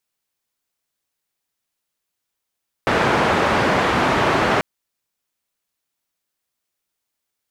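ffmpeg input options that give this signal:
-f lavfi -i "anoisesrc=c=white:d=1.74:r=44100:seed=1,highpass=f=82,lowpass=f=1300,volume=-0.6dB"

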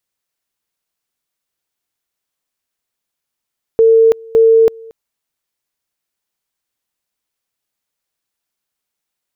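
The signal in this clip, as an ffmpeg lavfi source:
-f lavfi -i "aevalsrc='pow(10,(-5-26*gte(mod(t,0.56),0.33))/20)*sin(2*PI*451*t)':d=1.12:s=44100"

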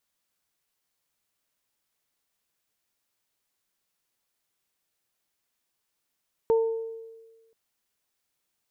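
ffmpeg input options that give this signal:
-f lavfi -i "aevalsrc='0.141*pow(10,-3*t/1.37)*sin(2*PI*452*t)+0.0355*pow(10,-3*t/0.69)*sin(2*PI*904*t)':d=1.03:s=44100"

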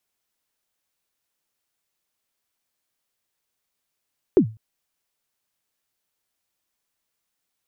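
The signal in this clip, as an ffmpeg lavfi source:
-f lavfi -i "aevalsrc='0.447*pow(10,-3*t/0.3)*sin(2*PI*(430*0.088/log(110/430)*(exp(log(110/430)*min(t,0.088)/0.088)-1)+110*max(t-0.088,0)))':d=0.2:s=44100"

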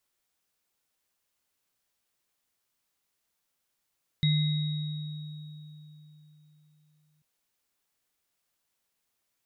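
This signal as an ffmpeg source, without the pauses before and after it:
-f lavfi -i "aevalsrc='0.0891*pow(10,-3*t/3.81)*sin(2*PI*152*t)+0.0126*pow(10,-3*t/1.26)*sin(2*PI*2060*t)+0.0398*pow(10,-3*t/2.82)*sin(2*PI*3790*t)':d=2.99:s=44100"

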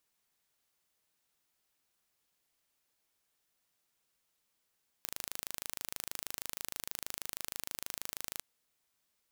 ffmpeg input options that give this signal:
-f lavfi -i "aevalsrc='0.282*eq(mod(n,1677),0)':d=3.36:s=44100"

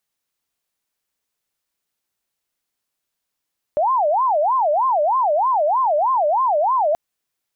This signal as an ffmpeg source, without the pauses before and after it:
-f lavfi -i "aevalsrc='0.188*sin(2*PI*(823*t-237/(2*PI*3.2)*sin(2*PI*3.2*t)))':d=3.18:s=44100"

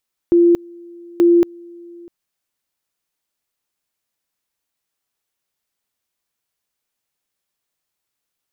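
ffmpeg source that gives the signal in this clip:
-f lavfi -i "aevalsrc='pow(10,(-8-27*gte(mod(t,0.88),0.23))/20)*sin(2*PI*344*t)':d=1.76:s=44100"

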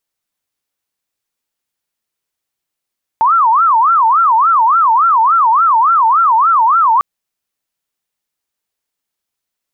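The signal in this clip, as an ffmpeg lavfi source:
-f lavfi -i "aevalsrc='0.447*sin(2*PI*(1127*t-243/(2*PI*3.5)*sin(2*PI*3.5*t)))':d=3.8:s=44100"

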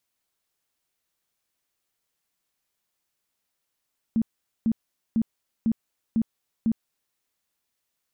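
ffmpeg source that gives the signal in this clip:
-f lavfi -i "aevalsrc='0.119*sin(2*PI*225*mod(t,0.5))*lt(mod(t,0.5),13/225)':d=3:s=44100"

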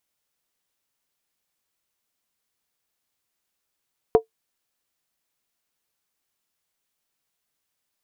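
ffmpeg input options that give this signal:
-f lavfi -i "aevalsrc='0.473*pow(10,-3*t/0.11)*sin(2*PI*446*t)+0.178*pow(10,-3*t/0.087)*sin(2*PI*710.9*t)+0.0668*pow(10,-3*t/0.075)*sin(2*PI*952.7*t)+0.0251*pow(10,-3*t/0.073)*sin(2*PI*1024*t)+0.00944*pow(10,-3*t/0.068)*sin(2*PI*1183.2*t)':d=0.63:s=44100"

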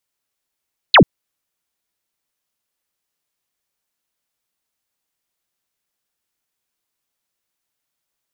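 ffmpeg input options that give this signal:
-f lavfi -i "aevalsrc='0.631*clip(t/0.002,0,1)*clip((0.09-t)/0.002,0,1)*sin(2*PI*4600*0.09/log(120/4600)*(exp(log(120/4600)*t/0.09)-1))':d=0.09:s=44100"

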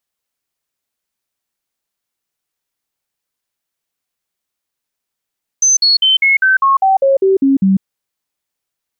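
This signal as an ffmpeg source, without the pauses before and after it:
-f lavfi -i "aevalsrc='0.422*clip(min(mod(t,0.2),0.15-mod(t,0.2))/0.005,0,1)*sin(2*PI*6160*pow(2,-floor(t/0.2)/2)*mod(t,0.2))':d=2.2:s=44100"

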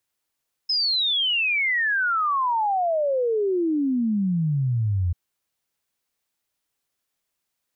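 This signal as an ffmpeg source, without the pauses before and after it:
-f lavfi -i "aevalsrc='0.106*clip(min(t,4.44-t)/0.01,0,1)*sin(2*PI*5200*4.44/log(84/5200)*(exp(log(84/5200)*t/4.44)-1))':d=4.44:s=44100"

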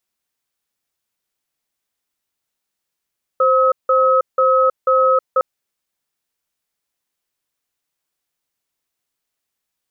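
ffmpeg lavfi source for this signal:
-f lavfi -i "aevalsrc='0.211*(sin(2*PI*523*t)+sin(2*PI*1280*t))*clip(min(mod(t,0.49),0.32-mod(t,0.49))/0.005,0,1)':d=2.01:s=44100"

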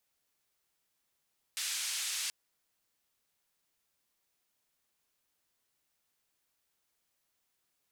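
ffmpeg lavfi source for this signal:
-f lavfi -i "anoisesrc=c=white:d=0.73:r=44100:seed=1,highpass=f=2200,lowpass=f=8500,volume=-25.8dB"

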